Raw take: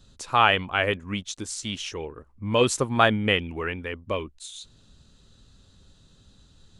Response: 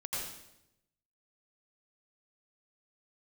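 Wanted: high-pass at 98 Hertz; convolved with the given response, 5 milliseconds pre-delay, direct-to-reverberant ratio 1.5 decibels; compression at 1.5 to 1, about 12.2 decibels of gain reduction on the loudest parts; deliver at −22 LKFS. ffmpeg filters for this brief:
-filter_complex "[0:a]highpass=98,acompressor=threshold=-49dB:ratio=1.5,asplit=2[link_01][link_02];[1:a]atrim=start_sample=2205,adelay=5[link_03];[link_02][link_03]afir=irnorm=-1:irlink=0,volume=-4.5dB[link_04];[link_01][link_04]amix=inputs=2:normalize=0,volume=12dB"

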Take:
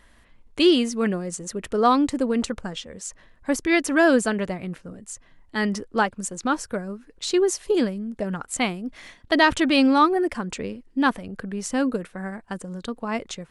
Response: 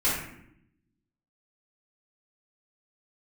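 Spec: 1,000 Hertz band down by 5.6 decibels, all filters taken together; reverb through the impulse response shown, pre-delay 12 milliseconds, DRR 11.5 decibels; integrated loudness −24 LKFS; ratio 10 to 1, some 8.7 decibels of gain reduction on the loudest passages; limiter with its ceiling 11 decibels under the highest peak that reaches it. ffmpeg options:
-filter_complex "[0:a]equalizer=frequency=1000:width_type=o:gain=-7.5,acompressor=threshold=-22dB:ratio=10,alimiter=limit=-22.5dB:level=0:latency=1,asplit=2[link_01][link_02];[1:a]atrim=start_sample=2205,adelay=12[link_03];[link_02][link_03]afir=irnorm=-1:irlink=0,volume=-23.5dB[link_04];[link_01][link_04]amix=inputs=2:normalize=0,volume=8dB"

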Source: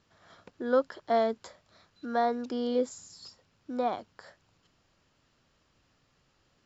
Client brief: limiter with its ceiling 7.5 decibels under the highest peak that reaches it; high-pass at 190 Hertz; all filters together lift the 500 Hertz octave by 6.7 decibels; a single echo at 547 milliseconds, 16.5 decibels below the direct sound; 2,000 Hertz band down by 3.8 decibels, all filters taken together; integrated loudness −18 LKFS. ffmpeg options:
ffmpeg -i in.wav -af "highpass=190,equalizer=frequency=500:width_type=o:gain=8,equalizer=frequency=2000:width_type=o:gain=-6,alimiter=limit=-16dB:level=0:latency=1,aecho=1:1:547:0.15,volume=10.5dB" out.wav

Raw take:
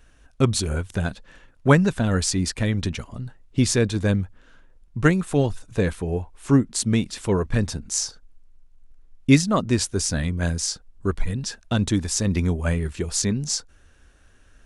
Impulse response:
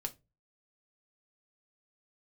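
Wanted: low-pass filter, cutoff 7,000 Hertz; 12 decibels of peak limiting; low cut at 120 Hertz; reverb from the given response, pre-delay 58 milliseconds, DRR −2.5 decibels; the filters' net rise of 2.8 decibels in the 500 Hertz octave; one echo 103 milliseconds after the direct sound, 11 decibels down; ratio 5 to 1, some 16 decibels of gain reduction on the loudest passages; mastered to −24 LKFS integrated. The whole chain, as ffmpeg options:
-filter_complex "[0:a]highpass=120,lowpass=7000,equalizer=frequency=500:width_type=o:gain=3.5,acompressor=threshold=-29dB:ratio=5,alimiter=level_in=1.5dB:limit=-24dB:level=0:latency=1,volume=-1.5dB,aecho=1:1:103:0.282,asplit=2[link_01][link_02];[1:a]atrim=start_sample=2205,adelay=58[link_03];[link_02][link_03]afir=irnorm=-1:irlink=0,volume=3dB[link_04];[link_01][link_04]amix=inputs=2:normalize=0,volume=8dB"

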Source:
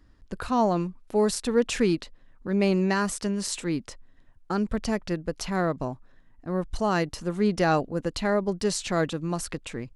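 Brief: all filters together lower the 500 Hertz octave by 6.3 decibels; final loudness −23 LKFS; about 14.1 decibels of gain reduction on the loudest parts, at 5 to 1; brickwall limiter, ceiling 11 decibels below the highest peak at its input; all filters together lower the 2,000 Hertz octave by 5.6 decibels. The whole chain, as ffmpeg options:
ffmpeg -i in.wav -af "equalizer=frequency=500:width_type=o:gain=-8,equalizer=frequency=2000:width_type=o:gain=-7,acompressor=threshold=-38dB:ratio=5,volume=21dB,alimiter=limit=-13dB:level=0:latency=1" out.wav

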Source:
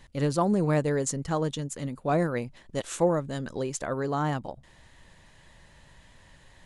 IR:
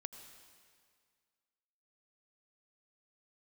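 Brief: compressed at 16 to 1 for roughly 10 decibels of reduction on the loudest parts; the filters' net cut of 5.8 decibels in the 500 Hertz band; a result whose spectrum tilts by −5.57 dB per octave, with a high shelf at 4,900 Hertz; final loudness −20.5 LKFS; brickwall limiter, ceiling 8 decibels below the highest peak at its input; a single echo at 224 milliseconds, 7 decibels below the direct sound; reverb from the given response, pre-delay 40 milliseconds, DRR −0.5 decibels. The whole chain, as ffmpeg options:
-filter_complex "[0:a]equalizer=frequency=500:width_type=o:gain=-7,highshelf=frequency=4900:gain=-7.5,acompressor=threshold=-32dB:ratio=16,alimiter=level_in=6dB:limit=-24dB:level=0:latency=1,volume=-6dB,aecho=1:1:224:0.447,asplit=2[link_01][link_02];[1:a]atrim=start_sample=2205,adelay=40[link_03];[link_02][link_03]afir=irnorm=-1:irlink=0,volume=4dB[link_04];[link_01][link_04]amix=inputs=2:normalize=0,volume=15.5dB"

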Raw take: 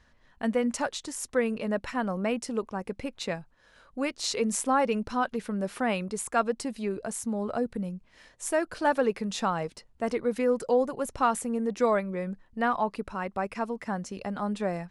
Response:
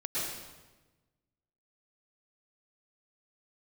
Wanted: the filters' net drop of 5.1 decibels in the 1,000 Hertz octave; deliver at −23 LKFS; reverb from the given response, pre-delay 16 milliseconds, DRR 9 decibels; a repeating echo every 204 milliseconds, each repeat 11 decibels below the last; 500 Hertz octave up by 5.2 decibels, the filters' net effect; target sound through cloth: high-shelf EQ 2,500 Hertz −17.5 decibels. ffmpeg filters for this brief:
-filter_complex "[0:a]equalizer=frequency=500:width_type=o:gain=8.5,equalizer=frequency=1000:width_type=o:gain=-8,aecho=1:1:204|408|612:0.282|0.0789|0.0221,asplit=2[link_01][link_02];[1:a]atrim=start_sample=2205,adelay=16[link_03];[link_02][link_03]afir=irnorm=-1:irlink=0,volume=-14.5dB[link_04];[link_01][link_04]amix=inputs=2:normalize=0,highshelf=frequency=2500:gain=-17.5,volume=3.5dB"

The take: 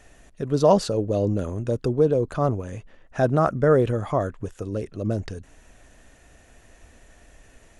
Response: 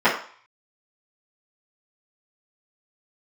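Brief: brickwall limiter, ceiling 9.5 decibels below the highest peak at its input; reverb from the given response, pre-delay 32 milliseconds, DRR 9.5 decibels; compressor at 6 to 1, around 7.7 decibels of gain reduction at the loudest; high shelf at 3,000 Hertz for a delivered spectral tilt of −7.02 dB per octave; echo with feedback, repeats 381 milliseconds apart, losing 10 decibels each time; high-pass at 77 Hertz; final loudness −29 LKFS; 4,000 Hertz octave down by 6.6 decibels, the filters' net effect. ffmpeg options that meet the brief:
-filter_complex "[0:a]highpass=77,highshelf=frequency=3000:gain=-4.5,equalizer=frequency=4000:width_type=o:gain=-4.5,acompressor=threshold=-21dB:ratio=6,alimiter=limit=-22.5dB:level=0:latency=1,aecho=1:1:381|762|1143|1524:0.316|0.101|0.0324|0.0104,asplit=2[link_01][link_02];[1:a]atrim=start_sample=2205,adelay=32[link_03];[link_02][link_03]afir=irnorm=-1:irlink=0,volume=-31.5dB[link_04];[link_01][link_04]amix=inputs=2:normalize=0,volume=3dB"

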